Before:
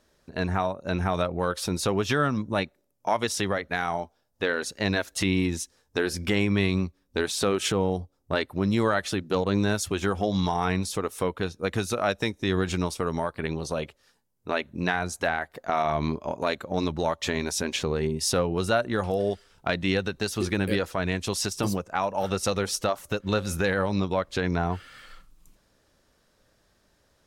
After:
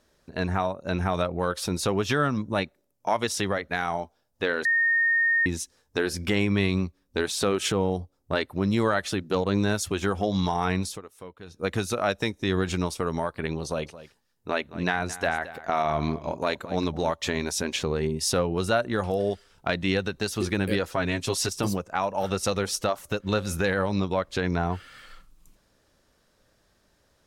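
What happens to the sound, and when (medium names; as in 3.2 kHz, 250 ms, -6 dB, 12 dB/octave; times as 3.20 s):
4.65–5.46 s: bleep 1.84 kHz -19 dBFS
10.86–11.61 s: dip -15.5 dB, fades 0.15 s
13.64–17.11 s: delay 220 ms -15.5 dB
20.91–21.49 s: comb 7.4 ms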